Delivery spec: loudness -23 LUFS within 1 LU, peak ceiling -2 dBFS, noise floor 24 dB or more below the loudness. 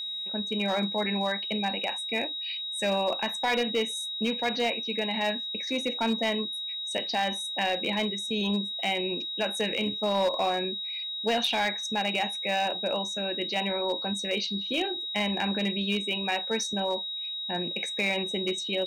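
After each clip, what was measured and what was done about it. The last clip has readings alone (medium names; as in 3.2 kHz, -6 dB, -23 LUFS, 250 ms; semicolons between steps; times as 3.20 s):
clipped samples 0.7%; clipping level -20.0 dBFS; steady tone 3.8 kHz; tone level -32 dBFS; loudness -28.0 LUFS; peak level -20.0 dBFS; loudness target -23.0 LUFS
-> clip repair -20 dBFS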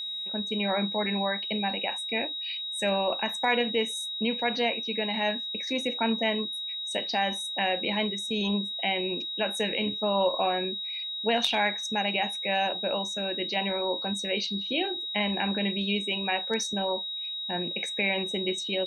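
clipped samples 0.0%; steady tone 3.8 kHz; tone level -32 dBFS
-> band-stop 3.8 kHz, Q 30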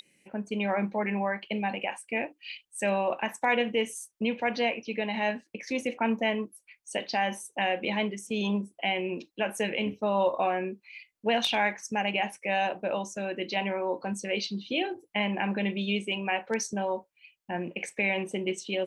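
steady tone not found; loudness -30.0 LUFS; peak level -12.5 dBFS; loudness target -23.0 LUFS
-> trim +7 dB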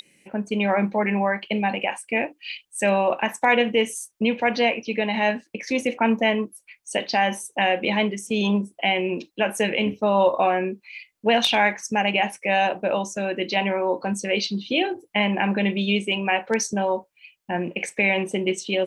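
loudness -23.0 LUFS; peak level -5.5 dBFS; noise floor -68 dBFS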